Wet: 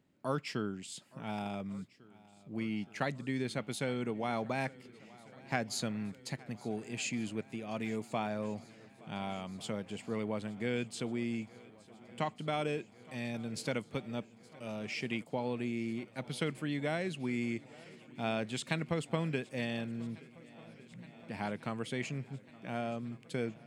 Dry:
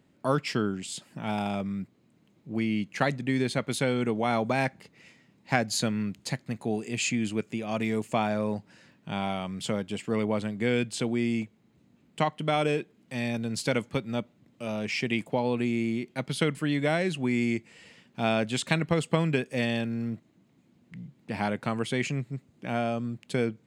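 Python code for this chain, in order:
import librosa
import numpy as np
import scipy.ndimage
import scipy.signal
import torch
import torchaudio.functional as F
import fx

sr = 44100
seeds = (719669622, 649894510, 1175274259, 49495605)

y = fx.echo_swing(x, sr, ms=1447, ratio=1.5, feedback_pct=71, wet_db=-22.5)
y = F.gain(torch.from_numpy(y), -8.5).numpy()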